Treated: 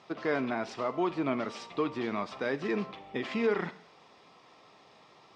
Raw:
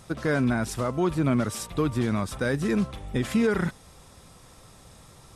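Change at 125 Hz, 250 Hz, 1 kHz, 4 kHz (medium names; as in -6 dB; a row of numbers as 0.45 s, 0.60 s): -16.5 dB, -8.5 dB, -2.0 dB, -4.5 dB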